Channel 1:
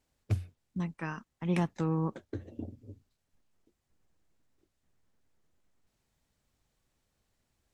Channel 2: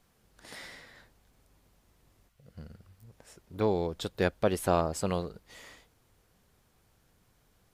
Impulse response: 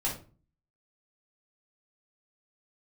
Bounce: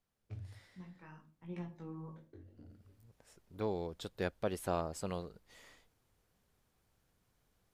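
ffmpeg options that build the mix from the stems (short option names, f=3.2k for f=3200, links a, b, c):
-filter_complex "[0:a]lowpass=5.2k,flanger=delay=17:depth=4.8:speed=0.64,volume=-18dB,asplit=2[a][b];[b]volume=-7.5dB[c];[1:a]volume=-9dB,afade=t=in:st=2.64:d=0.24:silence=0.334965[d];[2:a]atrim=start_sample=2205[e];[c][e]afir=irnorm=-1:irlink=0[f];[a][d][f]amix=inputs=3:normalize=0"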